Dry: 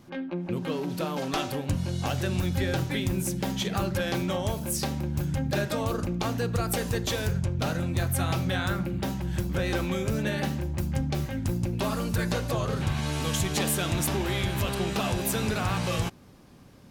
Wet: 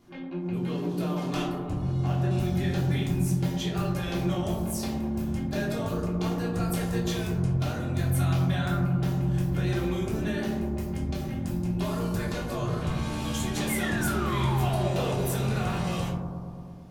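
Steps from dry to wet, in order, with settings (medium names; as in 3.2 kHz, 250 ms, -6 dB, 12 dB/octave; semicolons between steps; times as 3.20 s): 1.45–2.31 s: treble shelf 2.6 kHz -10.5 dB; 13.69–15.24 s: painted sound fall 370–2200 Hz -31 dBFS; bucket-brigade echo 113 ms, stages 1024, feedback 74%, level -6 dB; simulated room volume 430 m³, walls furnished, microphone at 3.2 m; trim -9 dB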